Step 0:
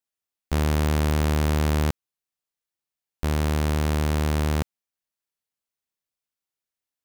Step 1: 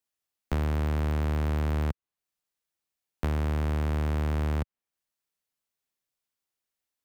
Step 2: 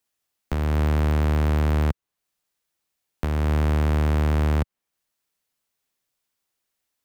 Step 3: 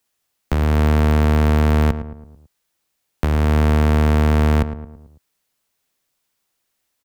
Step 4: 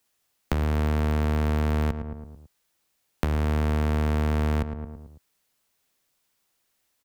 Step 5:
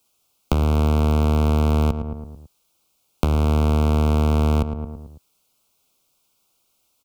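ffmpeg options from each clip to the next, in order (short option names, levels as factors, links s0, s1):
-filter_complex "[0:a]acrossover=split=100|2700[s0][s1][s2];[s0]acompressor=threshold=0.0316:ratio=4[s3];[s1]acompressor=threshold=0.0282:ratio=4[s4];[s2]acompressor=threshold=0.002:ratio=4[s5];[s3][s4][s5]amix=inputs=3:normalize=0,volume=1.19"
-af "alimiter=limit=0.0841:level=0:latency=1:release=347,volume=2.37"
-filter_complex "[0:a]asplit=2[s0][s1];[s1]adelay=110,lowpass=f=1400:p=1,volume=0.299,asplit=2[s2][s3];[s3]adelay=110,lowpass=f=1400:p=1,volume=0.5,asplit=2[s4][s5];[s5]adelay=110,lowpass=f=1400:p=1,volume=0.5,asplit=2[s6][s7];[s7]adelay=110,lowpass=f=1400:p=1,volume=0.5,asplit=2[s8][s9];[s9]adelay=110,lowpass=f=1400:p=1,volume=0.5[s10];[s0][s2][s4][s6][s8][s10]amix=inputs=6:normalize=0,volume=2.11"
-af "acompressor=threshold=0.0562:ratio=2.5"
-af "asuperstop=centerf=1800:order=4:qfactor=1.9,volume=2"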